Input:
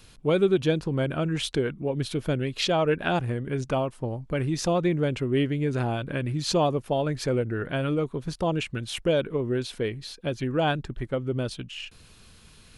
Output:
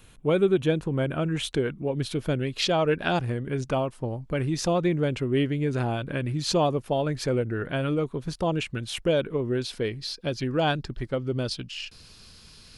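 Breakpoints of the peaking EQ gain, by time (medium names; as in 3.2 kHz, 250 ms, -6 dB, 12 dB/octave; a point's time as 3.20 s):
peaking EQ 4.9 kHz 0.51 oct
1.04 s -11.5 dB
1.80 s +0.5 dB
2.55 s +0.5 dB
3.09 s +11 dB
3.47 s +1 dB
9.34 s +1 dB
10.16 s +11.5 dB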